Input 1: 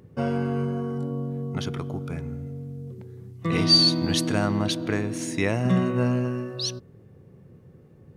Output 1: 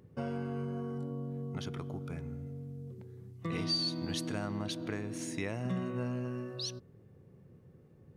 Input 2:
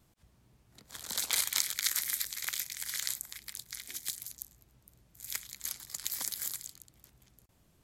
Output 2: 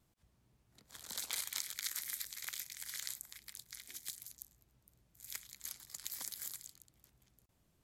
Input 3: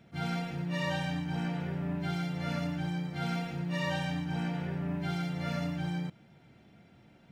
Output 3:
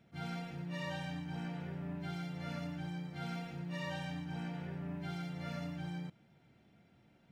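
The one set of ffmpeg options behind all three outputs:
ffmpeg -i in.wav -af "acompressor=threshold=-28dB:ratio=2,volume=-7.5dB" out.wav

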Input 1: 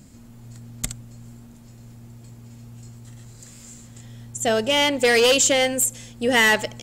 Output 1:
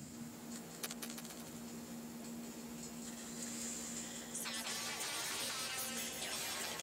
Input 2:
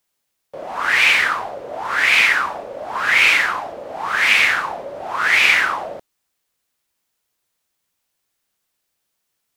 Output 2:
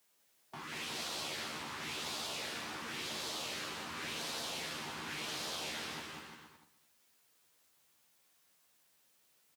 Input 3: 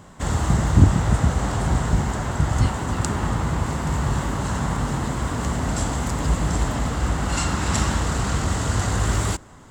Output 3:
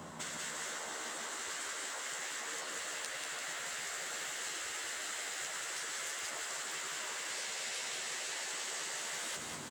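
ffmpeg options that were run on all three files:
ffmpeg -i in.wav -filter_complex "[0:a]acompressor=threshold=-21dB:ratio=12,afftfilt=real='re*lt(hypot(re,im),0.0447)':imag='im*lt(hypot(re,im),0.0447)':win_size=1024:overlap=0.75,asplit=2[link_01][link_02];[link_02]aecho=0:1:217:0.1[link_03];[link_01][link_03]amix=inputs=2:normalize=0,acrossover=split=160|2500[link_04][link_05][link_06];[link_04]acompressor=threshold=-59dB:ratio=4[link_07];[link_05]acompressor=threshold=-47dB:ratio=4[link_08];[link_06]acompressor=threshold=-44dB:ratio=4[link_09];[link_07][link_08][link_09]amix=inputs=3:normalize=0,highpass=100,asplit=2[link_10][link_11];[link_11]adelay=13,volume=-5dB[link_12];[link_10][link_12]amix=inputs=2:normalize=0,asplit=2[link_13][link_14];[link_14]aecho=0:1:190|342|463.6|560.9|638.7:0.631|0.398|0.251|0.158|0.1[link_15];[link_13][link_15]amix=inputs=2:normalize=0" out.wav

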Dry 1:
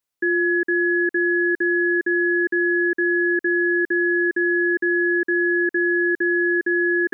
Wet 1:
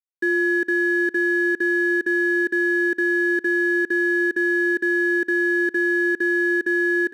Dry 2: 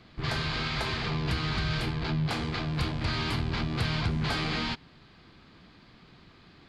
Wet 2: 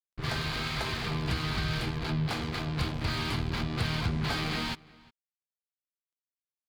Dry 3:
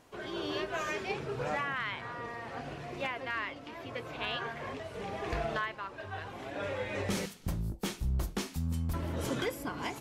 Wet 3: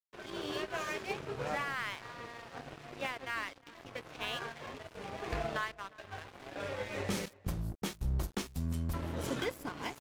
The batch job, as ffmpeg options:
ffmpeg -i in.wav -filter_complex "[0:a]aeval=exprs='sgn(val(0))*max(abs(val(0))-0.00668,0)':channel_layout=same,asplit=2[link_01][link_02];[link_02]adelay=355.7,volume=-23dB,highshelf=frequency=4000:gain=-8[link_03];[link_01][link_03]amix=inputs=2:normalize=0" out.wav

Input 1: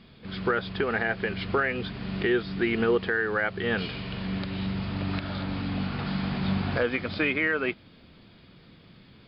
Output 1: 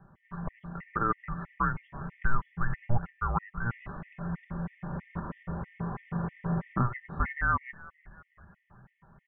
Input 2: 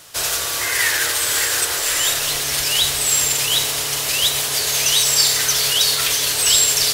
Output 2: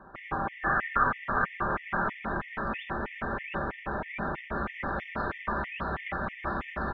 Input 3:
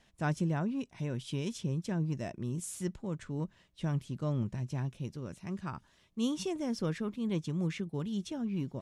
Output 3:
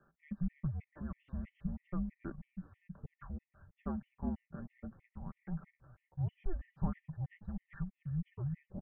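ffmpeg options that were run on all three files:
ffmpeg -i in.wav -filter_complex "[0:a]highpass=frequency=200:width_type=q:width=0.5412,highpass=frequency=200:width_type=q:width=1.307,lowpass=frequency=2000:width_type=q:width=0.5176,lowpass=frequency=2000:width_type=q:width=0.7071,lowpass=frequency=2000:width_type=q:width=1.932,afreqshift=-360,aecho=1:1:5.1:0.47,asplit=2[link_01][link_02];[link_02]asplit=4[link_03][link_04][link_05][link_06];[link_03]adelay=370,afreqshift=-47,volume=-21dB[link_07];[link_04]adelay=740,afreqshift=-94,volume=-26dB[link_08];[link_05]adelay=1110,afreqshift=-141,volume=-31.1dB[link_09];[link_06]adelay=1480,afreqshift=-188,volume=-36.1dB[link_10];[link_07][link_08][link_09][link_10]amix=inputs=4:normalize=0[link_11];[link_01][link_11]amix=inputs=2:normalize=0,afftfilt=real='re*gt(sin(2*PI*3.1*pts/sr)*(1-2*mod(floor(b*sr/1024/1800),2)),0)':imag='im*gt(sin(2*PI*3.1*pts/sr)*(1-2*mod(floor(b*sr/1024/1800),2)),0)':win_size=1024:overlap=0.75" out.wav

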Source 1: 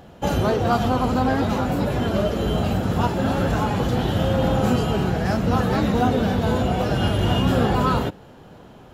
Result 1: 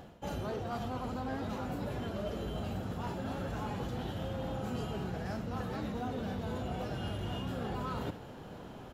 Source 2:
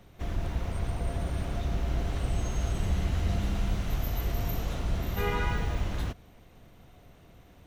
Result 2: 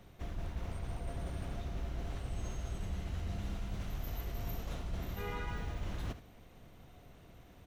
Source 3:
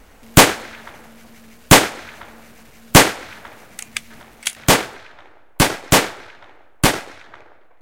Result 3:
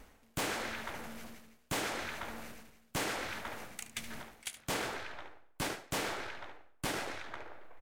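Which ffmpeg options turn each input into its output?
ffmpeg -i in.wav -af "areverse,acompressor=threshold=-33dB:ratio=6,areverse,asoftclip=type=hard:threshold=-28dB,aecho=1:1:72:0.224,volume=-2.5dB" out.wav

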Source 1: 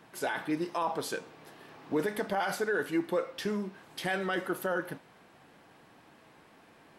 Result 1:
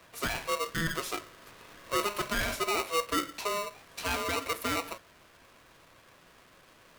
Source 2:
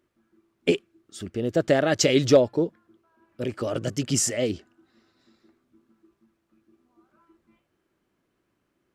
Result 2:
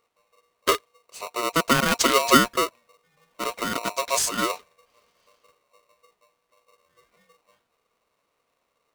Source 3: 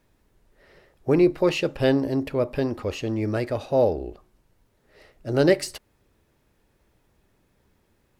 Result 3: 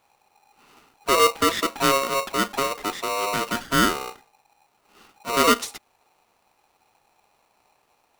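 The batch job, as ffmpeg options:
ffmpeg -i in.wav -af "aeval=exprs='val(0)*sgn(sin(2*PI*820*n/s))':channel_layout=same" out.wav

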